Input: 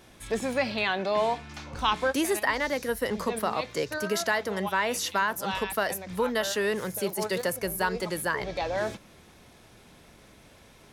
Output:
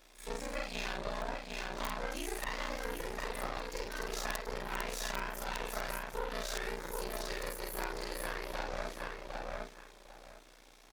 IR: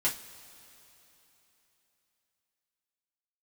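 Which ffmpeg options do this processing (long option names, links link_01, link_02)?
-filter_complex "[0:a]afftfilt=real='re':imag='-im':win_size=4096:overlap=0.75,highpass=160,asplit=2[link_01][link_02];[link_02]adelay=754,lowpass=frequency=3400:poles=1,volume=-5dB,asplit=2[link_03][link_04];[link_04]adelay=754,lowpass=frequency=3400:poles=1,volume=0.2,asplit=2[link_05][link_06];[link_06]adelay=754,lowpass=frequency=3400:poles=1,volume=0.2[link_07];[link_01][link_03][link_05][link_07]amix=inputs=4:normalize=0,acompressor=threshold=-35dB:ratio=3,equalizer=frequency=11000:width_type=o:width=1.4:gain=-12,aeval=exprs='(mod(18.8*val(0)+1,2)-1)/18.8':channel_layout=same,bass=frequency=250:gain=-11,treble=frequency=4000:gain=10,acrossover=split=2700[link_08][link_09];[link_09]acompressor=threshold=-34dB:ratio=4:attack=1:release=60[link_10];[link_08][link_10]amix=inputs=2:normalize=0,aeval=exprs='max(val(0),0)':channel_layout=same,aeval=exprs='val(0)*sin(2*PI*30*n/s)':channel_layout=same,bandreject=frequency=3000:width=24,volume=5.5dB"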